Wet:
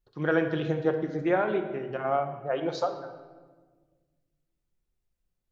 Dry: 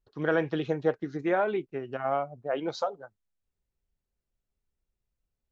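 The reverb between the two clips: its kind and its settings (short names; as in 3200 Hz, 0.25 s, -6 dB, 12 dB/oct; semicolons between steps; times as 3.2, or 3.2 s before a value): shoebox room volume 1300 m³, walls mixed, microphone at 0.9 m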